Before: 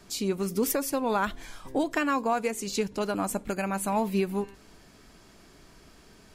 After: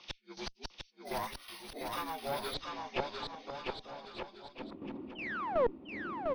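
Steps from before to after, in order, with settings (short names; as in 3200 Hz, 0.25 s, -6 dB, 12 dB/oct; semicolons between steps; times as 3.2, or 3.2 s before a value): inharmonic rescaling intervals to 79%; bell 1600 Hz -10.5 dB 0.23 oct; in parallel at -1 dB: vocal rider 0.5 s; 5.15–5.78 on the sum: painted sound fall 290–3200 Hz -28 dBFS; band-pass sweep 6000 Hz -> 290 Hz, 2.23–4.57; tremolo saw down 2.7 Hz, depth 70%; flipped gate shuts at -34 dBFS, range -40 dB; one-sided clip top -54.5 dBFS; air absorption 240 m; on a send: bouncing-ball echo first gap 0.7 s, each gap 0.75×, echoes 5; 1.05–2.54 on the sum: careless resampling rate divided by 3×, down none, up hold; gain +17.5 dB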